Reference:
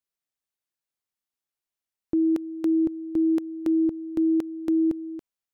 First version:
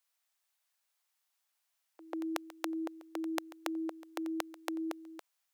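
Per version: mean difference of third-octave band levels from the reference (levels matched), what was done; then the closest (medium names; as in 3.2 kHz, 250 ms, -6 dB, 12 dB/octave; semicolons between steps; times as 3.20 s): 9.0 dB: high-pass 650 Hz 24 dB/octave; on a send: reverse echo 141 ms -17.5 dB; on the sum: trim +9 dB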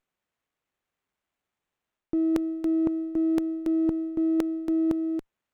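3.0 dB: reverse; compression, threshold -30 dBFS, peak gain reduction 9.5 dB; reverse; sliding maximum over 9 samples; trim +7 dB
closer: second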